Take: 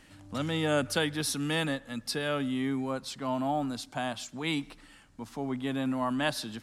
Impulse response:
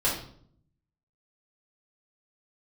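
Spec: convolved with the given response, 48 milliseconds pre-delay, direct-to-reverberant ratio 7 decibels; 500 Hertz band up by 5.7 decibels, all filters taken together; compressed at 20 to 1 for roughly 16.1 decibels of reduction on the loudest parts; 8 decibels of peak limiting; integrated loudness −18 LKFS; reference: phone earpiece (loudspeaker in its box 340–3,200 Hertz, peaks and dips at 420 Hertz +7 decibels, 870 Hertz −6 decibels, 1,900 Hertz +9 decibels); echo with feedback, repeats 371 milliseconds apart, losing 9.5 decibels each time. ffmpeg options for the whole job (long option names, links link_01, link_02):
-filter_complex "[0:a]equalizer=frequency=500:width_type=o:gain=5,acompressor=threshold=-36dB:ratio=20,alimiter=level_in=9.5dB:limit=-24dB:level=0:latency=1,volume=-9.5dB,aecho=1:1:371|742|1113|1484:0.335|0.111|0.0365|0.012,asplit=2[link_01][link_02];[1:a]atrim=start_sample=2205,adelay=48[link_03];[link_02][link_03]afir=irnorm=-1:irlink=0,volume=-17.5dB[link_04];[link_01][link_04]amix=inputs=2:normalize=0,highpass=340,equalizer=frequency=420:width_type=q:width=4:gain=7,equalizer=frequency=870:width_type=q:width=4:gain=-6,equalizer=frequency=1900:width_type=q:width=4:gain=9,lowpass=frequency=3200:width=0.5412,lowpass=frequency=3200:width=1.3066,volume=25dB"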